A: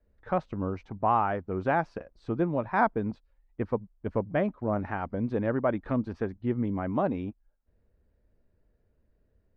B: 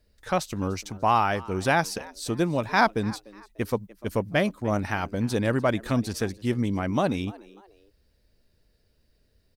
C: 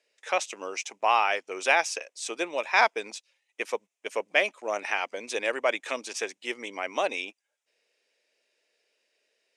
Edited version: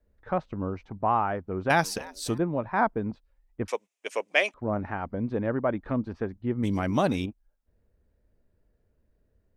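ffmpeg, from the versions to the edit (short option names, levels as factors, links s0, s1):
-filter_complex "[1:a]asplit=2[s0][s1];[0:a]asplit=4[s2][s3][s4][s5];[s2]atrim=end=1.702[s6];[s0]atrim=start=1.698:end=2.382[s7];[s3]atrim=start=2.378:end=3.682[s8];[2:a]atrim=start=3.678:end=4.542[s9];[s4]atrim=start=4.538:end=6.632[s10];[s1]atrim=start=6.628:end=7.262[s11];[s5]atrim=start=7.258[s12];[s6][s7]acrossfade=d=0.004:c1=hsin:c2=hsin[s13];[s13][s8]acrossfade=d=0.004:c1=hsin:c2=hsin[s14];[s14][s9]acrossfade=d=0.004:c1=hsin:c2=hsin[s15];[s15][s10]acrossfade=d=0.004:c1=hsin:c2=hsin[s16];[s16][s11]acrossfade=d=0.004:c1=hsin:c2=hsin[s17];[s17][s12]acrossfade=d=0.004:c1=hsin:c2=hsin"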